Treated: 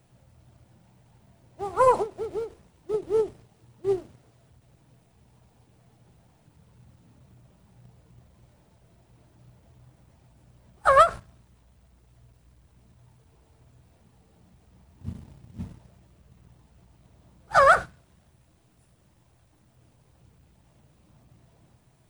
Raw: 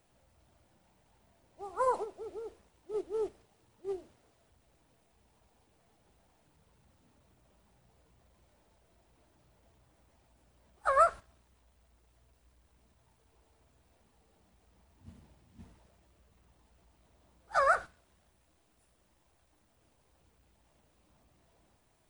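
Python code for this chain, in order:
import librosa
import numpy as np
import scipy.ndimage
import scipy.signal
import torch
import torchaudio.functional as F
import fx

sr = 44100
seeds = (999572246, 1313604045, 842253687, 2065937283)

y = fx.peak_eq(x, sr, hz=130.0, db=14.5, octaves=1.4)
y = fx.hum_notches(y, sr, base_hz=50, count=5)
y = fx.leveller(y, sr, passes=1)
y = fx.end_taper(y, sr, db_per_s=250.0)
y = y * librosa.db_to_amplitude(6.5)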